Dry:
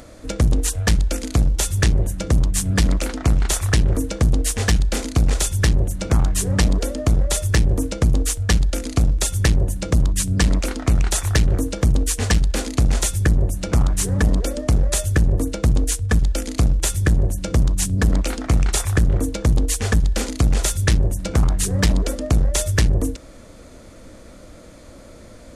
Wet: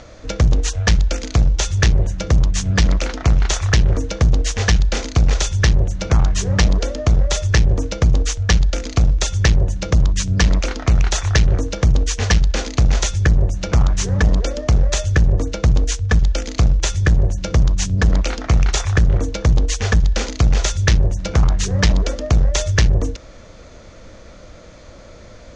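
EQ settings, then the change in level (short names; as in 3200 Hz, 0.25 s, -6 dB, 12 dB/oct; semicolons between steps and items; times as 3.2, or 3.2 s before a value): Chebyshev low-pass 6400 Hz, order 4; bell 270 Hz -7 dB 0.78 oct; +4.0 dB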